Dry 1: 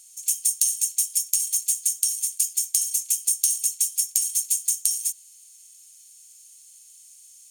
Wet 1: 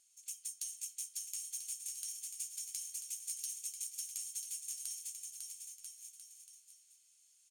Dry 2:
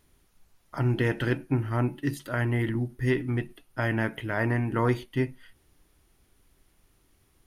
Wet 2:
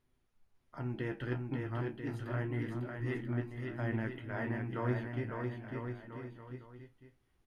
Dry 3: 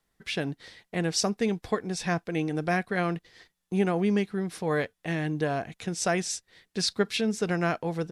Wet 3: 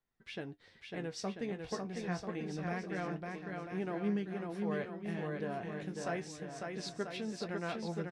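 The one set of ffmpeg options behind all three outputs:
-af "lowpass=frequency=2800:poles=1,flanger=delay=7.9:depth=9.6:regen=49:speed=0.28:shape=sinusoidal,aecho=1:1:550|990|1342|1624|1849:0.631|0.398|0.251|0.158|0.1,volume=-7.5dB"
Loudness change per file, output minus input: −19.5, −10.0, −10.5 LU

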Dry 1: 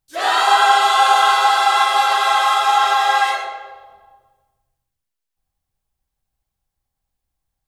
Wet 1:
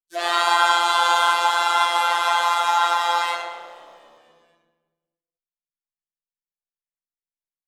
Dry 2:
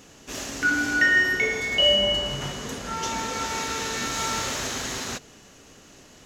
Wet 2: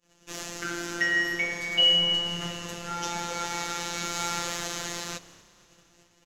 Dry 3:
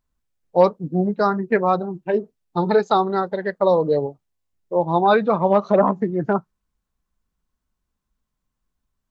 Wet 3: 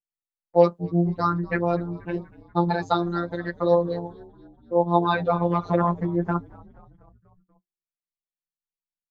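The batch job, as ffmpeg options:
-filter_complex "[0:a]agate=range=-28dB:threshold=-48dB:ratio=16:detection=peak,afftfilt=real='hypot(re,im)*cos(PI*b)':imag='0':win_size=1024:overlap=0.75,asplit=2[link_01][link_02];[link_02]asplit=5[link_03][link_04][link_05][link_06][link_07];[link_03]adelay=241,afreqshift=-71,volume=-23dB[link_08];[link_04]adelay=482,afreqshift=-142,volume=-26.9dB[link_09];[link_05]adelay=723,afreqshift=-213,volume=-30.8dB[link_10];[link_06]adelay=964,afreqshift=-284,volume=-34.6dB[link_11];[link_07]adelay=1205,afreqshift=-355,volume=-38.5dB[link_12];[link_08][link_09][link_10][link_11][link_12]amix=inputs=5:normalize=0[link_13];[link_01][link_13]amix=inputs=2:normalize=0"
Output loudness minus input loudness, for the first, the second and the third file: −4.5, −3.5, −4.0 LU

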